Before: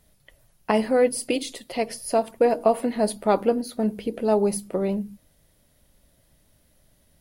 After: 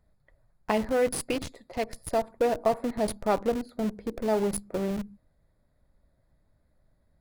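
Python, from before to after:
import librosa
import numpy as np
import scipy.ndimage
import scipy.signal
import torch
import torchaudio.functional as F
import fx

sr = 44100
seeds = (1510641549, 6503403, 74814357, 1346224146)

p1 = fx.wiener(x, sr, points=15)
p2 = fx.peak_eq(p1, sr, hz=300.0, db=-5.0, octaves=2.7)
p3 = fx.schmitt(p2, sr, flips_db=-30.0)
p4 = p2 + F.gain(torch.from_numpy(p3), -4.5).numpy()
y = F.gain(torch.from_numpy(p4), -3.0).numpy()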